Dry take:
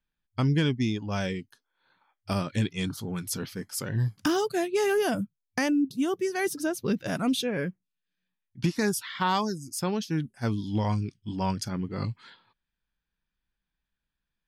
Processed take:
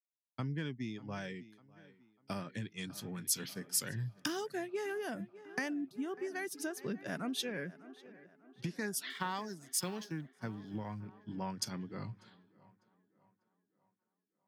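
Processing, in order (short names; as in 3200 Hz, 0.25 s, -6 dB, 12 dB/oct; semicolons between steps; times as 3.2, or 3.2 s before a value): 9.1–11.22 G.711 law mismatch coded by A; dynamic EQ 1800 Hz, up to +6 dB, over -50 dBFS, Q 2.9; tape echo 0.597 s, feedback 75%, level -17 dB, low-pass 4200 Hz; compressor 6:1, threshold -32 dBFS, peak gain reduction 11.5 dB; HPF 120 Hz 24 dB/oct; three-band expander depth 100%; gain -4.5 dB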